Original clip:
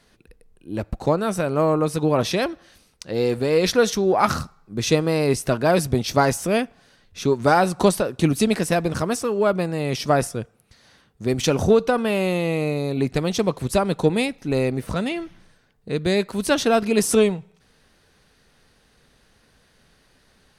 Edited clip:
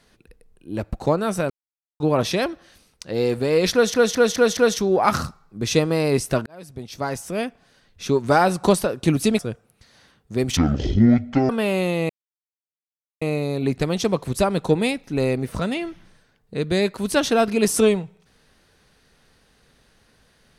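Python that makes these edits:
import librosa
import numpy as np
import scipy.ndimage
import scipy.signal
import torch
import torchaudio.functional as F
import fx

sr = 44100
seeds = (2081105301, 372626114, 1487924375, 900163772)

y = fx.edit(x, sr, fx.silence(start_s=1.5, length_s=0.5),
    fx.stutter(start_s=3.73, slice_s=0.21, count=5),
    fx.fade_in_span(start_s=5.62, length_s=1.64),
    fx.cut(start_s=8.55, length_s=1.74),
    fx.speed_span(start_s=11.47, length_s=0.49, speed=0.53),
    fx.insert_silence(at_s=12.56, length_s=1.12), tone=tone)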